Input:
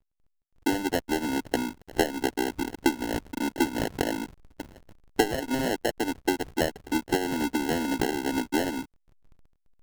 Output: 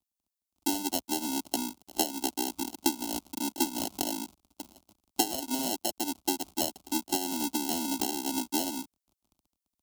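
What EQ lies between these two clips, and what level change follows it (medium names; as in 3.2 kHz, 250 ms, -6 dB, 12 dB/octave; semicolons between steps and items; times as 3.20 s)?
high-pass 90 Hz 12 dB/octave; treble shelf 2.6 kHz +12 dB; static phaser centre 470 Hz, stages 6; -4.5 dB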